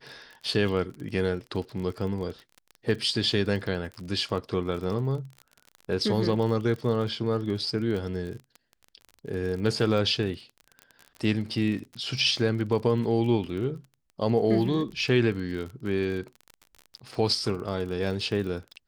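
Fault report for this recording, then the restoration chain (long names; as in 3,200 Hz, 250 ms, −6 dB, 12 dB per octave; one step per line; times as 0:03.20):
surface crackle 33 per second −34 dBFS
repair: click removal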